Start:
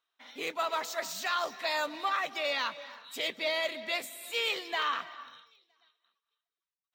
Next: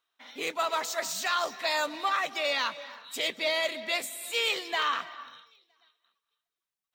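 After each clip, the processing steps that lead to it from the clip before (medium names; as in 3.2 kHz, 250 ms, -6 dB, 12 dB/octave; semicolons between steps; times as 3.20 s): dynamic bell 8.3 kHz, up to +5 dB, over -52 dBFS, Q 1; trim +2.5 dB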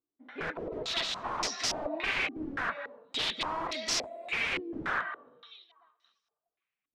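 band-stop 950 Hz, Q 22; integer overflow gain 28 dB; step-sequenced low-pass 3.5 Hz 300–5500 Hz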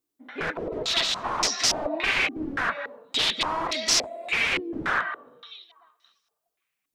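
treble shelf 5.1 kHz +6.5 dB; trim +6 dB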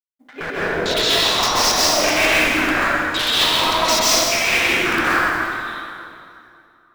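companding laws mixed up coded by A; in parallel at -3.5 dB: integer overflow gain 15.5 dB; on the sum: plate-style reverb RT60 2.6 s, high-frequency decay 0.7×, pre-delay 115 ms, DRR -8 dB; trim -2 dB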